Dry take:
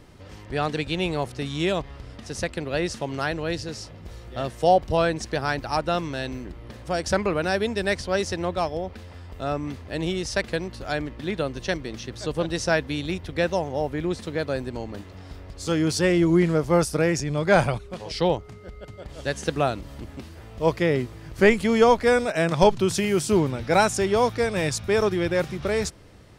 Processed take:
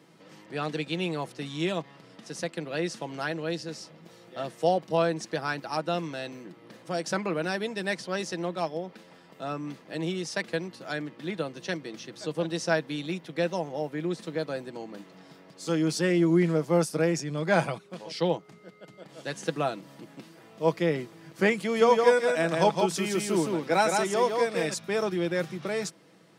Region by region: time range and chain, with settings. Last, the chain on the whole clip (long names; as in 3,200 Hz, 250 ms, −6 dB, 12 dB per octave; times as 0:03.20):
0:21.59–0:24.74: high-pass filter 190 Hz + single-tap delay 164 ms −4 dB
whole clip: Butterworth high-pass 150 Hz 36 dB per octave; comb filter 6.1 ms, depth 41%; level −5.5 dB